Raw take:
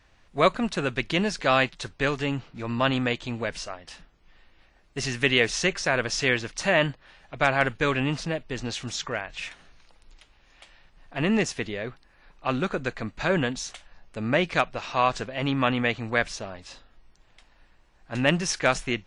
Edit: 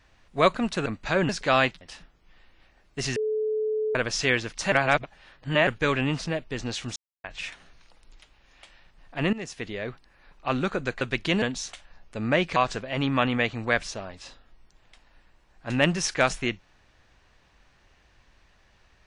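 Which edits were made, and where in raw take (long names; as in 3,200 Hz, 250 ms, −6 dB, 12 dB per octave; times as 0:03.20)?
0:00.86–0:01.27: swap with 0:13.00–0:13.43
0:01.79–0:03.80: remove
0:05.15–0:05.94: beep over 432 Hz −23.5 dBFS
0:06.71–0:07.66: reverse
0:08.95–0:09.23: silence
0:11.32–0:11.83: fade in, from −19 dB
0:14.57–0:15.01: remove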